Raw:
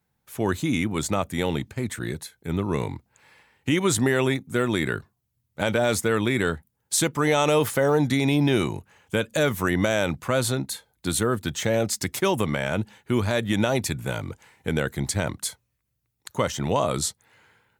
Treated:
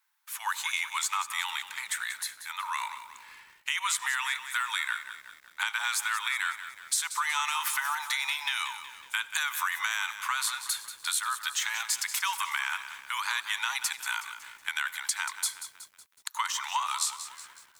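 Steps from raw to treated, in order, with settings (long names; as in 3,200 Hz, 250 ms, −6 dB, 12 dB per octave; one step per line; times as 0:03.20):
Butterworth high-pass 910 Hz 72 dB per octave
downward compressor 5 to 1, threshold −31 dBFS, peak gain reduction 11 dB
on a send at −18 dB: convolution reverb RT60 0.70 s, pre-delay 70 ms
on the sum: feedback echo at a low word length 185 ms, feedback 55%, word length 9 bits, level −11 dB
level +4.5 dB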